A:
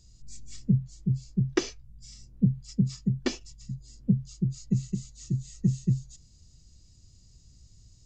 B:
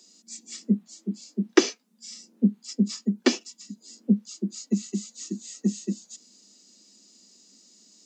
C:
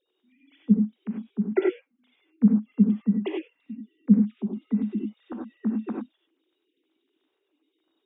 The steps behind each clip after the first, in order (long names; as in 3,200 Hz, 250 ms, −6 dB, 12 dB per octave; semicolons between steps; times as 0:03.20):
Butterworth high-pass 200 Hz 96 dB per octave; level +8.5 dB
three sine waves on the formant tracks; reverb whose tail is shaped and stops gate 120 ms rising, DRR −0.5 dB